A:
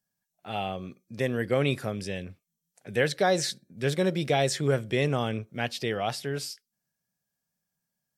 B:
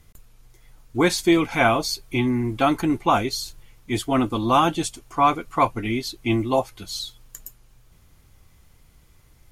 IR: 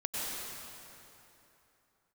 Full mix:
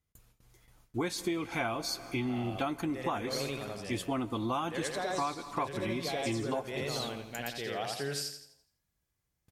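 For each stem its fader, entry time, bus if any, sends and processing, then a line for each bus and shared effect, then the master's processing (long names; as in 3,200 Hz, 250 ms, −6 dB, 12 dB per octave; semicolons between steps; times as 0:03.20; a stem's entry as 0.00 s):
+1.0 dB, 1.75 s, no send, echo send −9.5 dB, low-shelf EQ 220 Hz −7.5 dB; automatic ducking −11 dB, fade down 1.30 s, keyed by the second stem
−6.5 dB, 0.00 s, send −23 dB, no echo send, noise gate with hold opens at −41 dBFS; high-pass filter 43 Hz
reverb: on, RT60 3.0 s, pre-delay 88 ms
echo: repeating echo 84 ms, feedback 40%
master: downward compressor 6 to 1, threshold −30 dBFS, peak gain reduction 11.5 dB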